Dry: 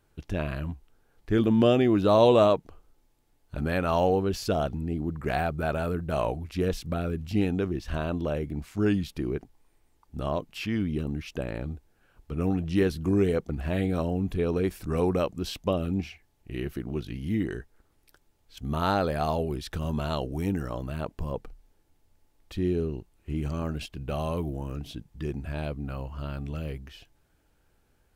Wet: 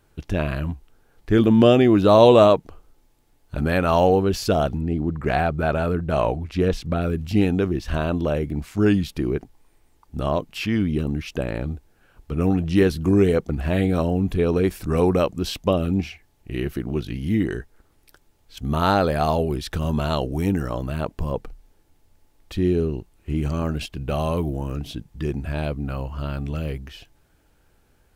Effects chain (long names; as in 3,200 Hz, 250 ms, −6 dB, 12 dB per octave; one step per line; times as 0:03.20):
0:04.78–0:07.02: high-shelf EQ 7,900 Hz −12 dB
level +6.5 dB